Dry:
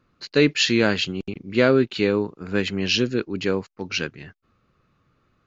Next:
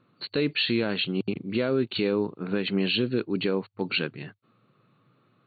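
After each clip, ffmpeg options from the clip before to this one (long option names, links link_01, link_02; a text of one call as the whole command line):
ffmpeg -i in.wav -af "afftfilt=real='re*between(b*sr/4096,100,4500)':imag='im*between(b*sr/4096,100,4500)':win_size=4096:overlap=0.75,equalizer=frequency=1800:width=1.7:gain=-4.5,alimiter=limit=-18dB:level=0:latency=1:release=166,volume=2.5dB" out.wav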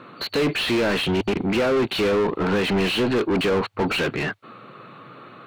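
ffmpeg -i in.wav -filter_complex "[0:a]asplit=2[link_01][link_02];[link_02]highpass=frequency=720:poles=1,volume=33dB,asoftclip=type=tanh:threshold=-15dB[link_03];[link_01][link_03]amix=inputs=2:normalize=0,lowpass=frequency=1700:poles=1,volume=-6dB,volume=1.5dB" out.wav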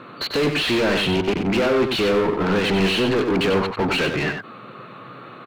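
ffmpeg -i in.wav -filter_complex "[0:a]asplit=2[link_01][link_02];[link_02]volume=26dB,asoftclip=hard,volume=-26dB,volume=-3.5dB[link_03];[link_01][link_03]amix=inputs=2:normalize=0,asplit=2[link_04][link_05];[link_05]adelay=93.29,volume=-6dB,highshelf=frequency=4000:gain=-2.1[link_06];[link_04][link_06]amix=inputs=2:normalize=0,volume=-1.5dB" out.wav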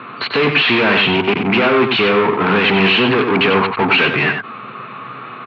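ffmpeg -i in.wav -af "highpass=frequency=120:width=0.5412,highpass=frequency=120:width=1.3066,equalizer=frequency=170:width_type=q:width=4:gain=-7,equalizer=frequency=320:width_type=q:width=4:gain=-8,equalizer=frequency=550:width_type=q:width=4:gain=-9,equalizer=frequency=1100:width_type=q:width=4:gain=3,equalizer=frequency=2400:width_type=q:width=4:gain=4,lowpass=frequency=3500:width=0.5412,lowpass=frequency=3500:width=1.3066,volume=8.5dB" out.wav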